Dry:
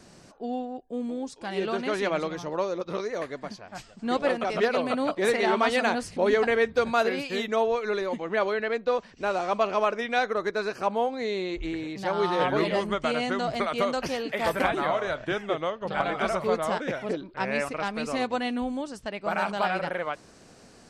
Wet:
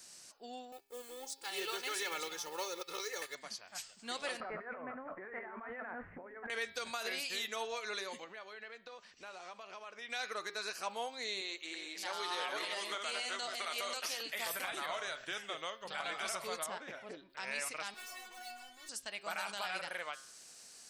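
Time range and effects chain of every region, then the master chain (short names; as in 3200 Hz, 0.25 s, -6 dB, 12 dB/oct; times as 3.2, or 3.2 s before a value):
0.72–3.35 G.711 law mismatch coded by A + comb 2.3 ms, depth 98%
4.4–6.5 steep low-pass 1900 Hz 48 dB/oct + negative-ratio compressor -32 dBFS + low shelf 140 Hz +9.5 dB
8.24–10.1 LPF 3200 Hz 6 dB/oct + compressor 8:1, threshold -33 dBFS
11.41–14.21 reverse delay 0.224 s, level -7.5 dB + HPF 320 Hz
16.66–17.3 LPF 1100 Hz 6 dB/oct + notch 490 Hz, Q 11
17.94–18.89 overdrive pedal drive 40 dB, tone 1100 Hz, clips at -14.5 dBFS + metallic resonator 360 Hz, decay 0.28 s, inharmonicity 0.002
whole clip: pre-emphasis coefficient 0.97; de-hum 135 Hz, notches 40; limiter -33.5 dBFS; gain +6 dB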